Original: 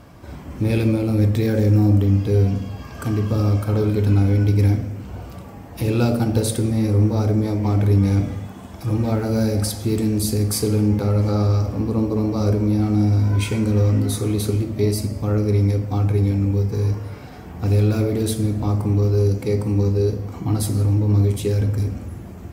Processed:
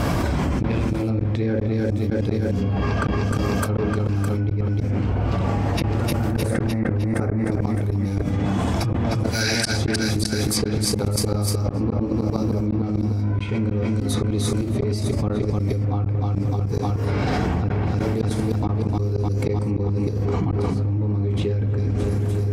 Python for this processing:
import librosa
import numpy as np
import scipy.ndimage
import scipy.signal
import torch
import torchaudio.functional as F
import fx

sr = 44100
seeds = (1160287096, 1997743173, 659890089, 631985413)

p1 = fx.fade_out_tail(x, sr, length_s=3.1)
p2 = fx.high_shelf_res(p1, sr, hz=2600.0, db=-11.0, q=3.0, at=(5.89, 7.52))
p3 = fx.brickwall_highpass(p2, sr, low_hz=1400.0, at=(9.29, 9.73))
p4 = p3 + fx.echo_bbd(p3, sr, ms=256, stages=4096, feedback_pct=49, wet_db=-18, dry=0)
p5 = fx.rider(p4, sr, range_db=4, speed_s=0.5)
p6 = fx.gate_flip(p5, sr, shuts_db=-12.0, range_db=-39)
p7 = fx.echo_feedback(p6, sr, ms=305, feedback_pct=52, wet_db=-21)
p8 = fx.env_lowpass_down(p7, sr, base_hz=2800.0, full_db=-23.0)
p9 = fx.env_flatten(p8, sr, amount_pct=100)
y = p9 * librosa.db_to_amplitude(-4.5)